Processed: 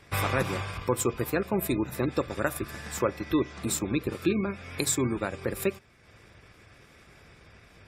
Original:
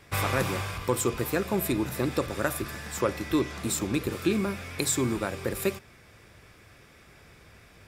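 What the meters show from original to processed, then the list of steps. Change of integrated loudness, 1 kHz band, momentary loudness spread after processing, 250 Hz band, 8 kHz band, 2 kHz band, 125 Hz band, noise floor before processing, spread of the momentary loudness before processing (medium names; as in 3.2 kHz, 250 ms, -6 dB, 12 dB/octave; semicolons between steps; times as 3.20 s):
-0.5 dB, -0.5 dB, 5 LU, -0.5 dB, -1.0 dB, -1.0 dB, -0.5 dB, -55 dBFS, 5 LU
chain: transient shaper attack 0 dB, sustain -6 dB; spectral gate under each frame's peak -30 dB strong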